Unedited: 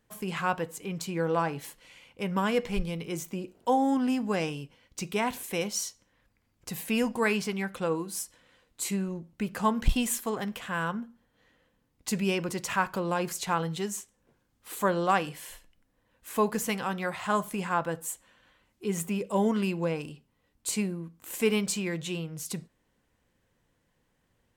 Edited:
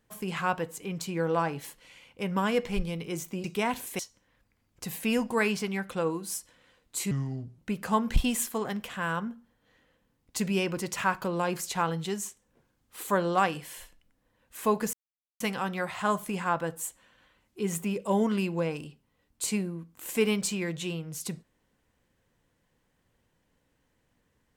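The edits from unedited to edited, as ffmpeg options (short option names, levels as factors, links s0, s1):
-filter_complex "[0:a]asplit=6[s0][s1][s2][s3][s4][s5];[s0]atrim=end=3.442[s6];[s1]atrim=start=5.008:end=5.562[s7];[s2]atrim=start=5.838:end=8.964[s8];[s3]atrim=start=8.96:end=9.3,asetpts=PTS-STARTPTS,asetrate=31752,aresample=44100[s9];[s4]atrim=start=9.296:end=16.65,asetpts=PTS-STARTPTS,afade=t=out:st=7.35:d=0.004:c=hsin,apad=pad_dur=0.47[s10];[s5]atrim=start=16.65,asetpts=PTS-STARTPTS,afade=t=in:d=0.004:c=hsin[s11];[s6][s7]acrossfade=d=0.004:c1=hsin:c2=hsin[s12];[s12][s8]acrossfade=d=0.004:c1=hsin:c2=hsin[s13];[s13][s9]acrossfade=d=0.004:c1=hsin:c2=hsin[s14];[s10][s11]concat=n=2:v=0:a=1[s15];[s14][s15]acrossfade=d=0.004:c1=hsin:c2=hsin"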